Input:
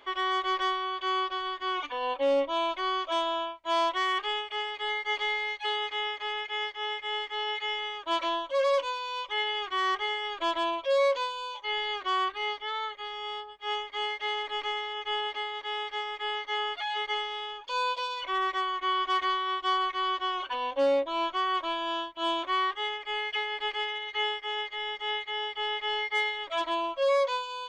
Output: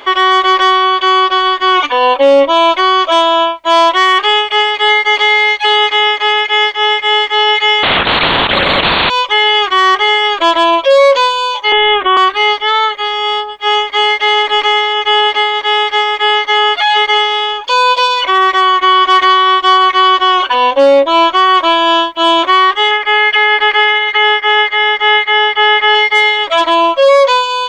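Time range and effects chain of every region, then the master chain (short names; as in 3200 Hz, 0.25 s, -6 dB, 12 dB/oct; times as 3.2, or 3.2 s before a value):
7.83–9.1 LPC vocoder at 8 kHz whisper + spectral compressor 4:1
11.72–12.17 steep low-pass 3600 Hz 96 dB/oct + low shelf 420 Hz +8.5 dB
22.91–25.95 LPF 3000 Hz 6 dB/oct + bell 1600 Hz +7.5 dB 0.93 oct
whole clip: low shelf 99 Hz -8 dB; maximiser +23 dB; gain -1 dB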